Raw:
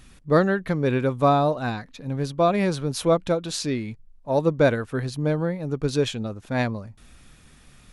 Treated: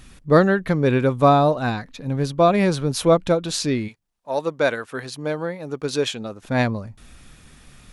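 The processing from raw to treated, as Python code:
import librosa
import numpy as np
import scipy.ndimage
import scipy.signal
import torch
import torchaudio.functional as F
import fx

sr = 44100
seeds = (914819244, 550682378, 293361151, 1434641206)

y = fx.highpass(x, sr, hz=fx.line((3.87, 1200.0), (6.41, 370.0)), slope=6, at=(3.87, 6.41), fade=0.02)
y = y * 10.0 ** (4.0 / 20.0)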